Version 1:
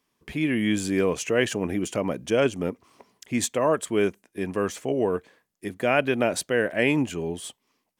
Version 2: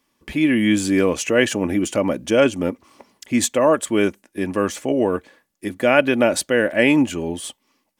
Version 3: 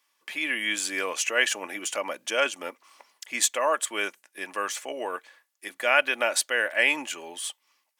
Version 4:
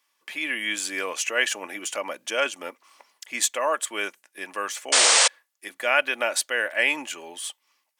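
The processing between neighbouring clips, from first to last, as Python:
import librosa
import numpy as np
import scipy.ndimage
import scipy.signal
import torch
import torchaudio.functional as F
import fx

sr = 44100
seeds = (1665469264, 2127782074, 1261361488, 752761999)

y1 = x + 0.39 * np.pad(x, (int(3.5 * sr / 1000.0), 0))[:len(x)]
y1 = y1 * librosa.db_to_amplitude(5.5)
y2 = scipy.signal.sosfilt(scipy.signal.butter(2, 980.0, 'highpass', fs=sr, output='sos'), y1)
y2 = y2 * librosa.db_to_amplitude(-1.0)
y3 = fx.spec_paint(y2, sr, seeds[0], shape='noise', start_s=4.92, length_s=0.36, low_hz=450.0, high_hz=9300.0, level_db=-17.0)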